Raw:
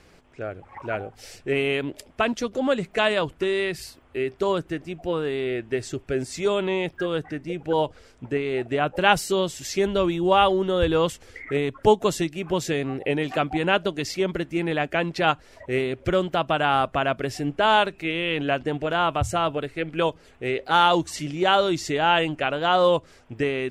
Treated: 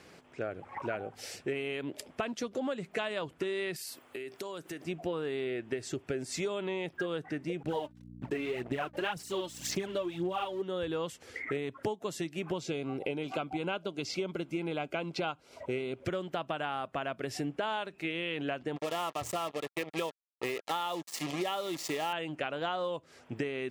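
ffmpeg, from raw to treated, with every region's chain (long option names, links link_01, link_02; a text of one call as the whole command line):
ffmpeg -i in.wav -filter_complex "[0:a]asettb=1/sr,asplit=3[link_01][link_02][link_03];[link_01]atrim=end=3.764[link_04];[link_02]atrim=start=3.76:end=4.84,asetpts=PTS-STARTPTS,afade=type=in:duration=0.004:curve=qsin,afade=type=out:start_time=1.076:duration=0.004:curve=qsin,highpass=frequency=240:poles=1,aemphasis=mode=production:type=50kf,acompressor=threshold=-36dB:ratio=16:attack=3.2:release=140:knee=1:detection=peak[link_05];[link_03]atrim=start=4.836[link_06];[link_04][link_05]acrossfade=duration=0.004:curve1=hsin:curve2=qsin[link_07];[link_07][link_06]acrossfade=duration=0.004:curve1=qsin:curve2=hsin,asettb=1/sr,asplit=3[link_08][link_09][link_10];[link_08]atrim=end=7.634[link_11];[link_09]atrim=start=7.63:end=10.62,asetpts=PTS-STARTPTS,afade=type=in:duration=0.004:curve=qsin,afade=type=out:start_time=2.986:duration=0.004:curve=qsin,aeval=exprs='sgn(val(0))*max(abs(val(0))-0.00708,0)':channel_layout=same,aphaser=in_gain=1:out_gain=1:delay=3.4:decay=0.63:speed=1.9:type=sinusoidal,aeval=exprs='val(0)+0.00891*(sin(2*PI*60*n/s)+sin(2*PI*2*60*n/s)/2+sin(2*PI*3*60*n/s)/3+sin(2*PI*4*60*n/s)/4+sin(2*PI*5*60*n/s)/5)':channel_layout=same[link_12];[link_10]atrim=start=10.616[link_13];[link_11][link_12]acrossfade=duration=0.004:curve1=hsin:curve2=qsin[link_14];[link_14][link_13]acrossfade=duration=0.004:curve1=qsin:curve2=hsin,asettb=1/sr,asplit=3[link_15][link_16][link_17];[link_15]atrim=end=12.544[link_18];[link_16]atrim=start=12.54:end=16,asetpts=PTS-STARTPTS,afade=type=in:duration=0.004:curve=qsin,afade=type=out:start_time=3.456:duration=0.004:curve=qsin,acrossover=split=7000[link_19][link_20];[link_20]acompressor=threshold=-57dB:ratio=4:attack=1:release=60[link_21];[link_19][link_21]amix=inputs=2:normalize=0,asuperstop=centerf=1800:order=4:qfactor=4.3[link_22];[link_17]atrim=start=15.996[link_23];[link_18][link_22]acrossfade=duration=0.004:curve1=hsin:curve2=qsin[link_24];[link_24][link_23]acrossfade=duration=0.004:curve1=qsin:curve2=hsin,asettb=1/sr,asplit=3[link_25][link_26][link_27];[link_25]atrim=end=18.764[link_28];[link_26]atrim=start=18.76:end=22.13,asetpts=PTS-STARTPTS,afade=type=in:duration=0.004:curve=qsin,afade=type=out:start_time=3.366:duration=0.004:curve=qsin,acrusher=bits=4:mix=0:aa=0.5,asuperstop=centerf=1500:order=8:qfactor=6.5,lowshelf=frequency=160:gain=-9.5[link_29];[link_27]atrim=start=22.126[link_30];[link_28][link_29]acrossfade=duration=0.004:curve1=hsin:curve2=qsin[link_31];[link_31][link_30]acrossfade=duration=0.004:curve1=qsin:curve2=hsin,highpass=130,acompressor=threshold=-31dB:ratio=12" out.wav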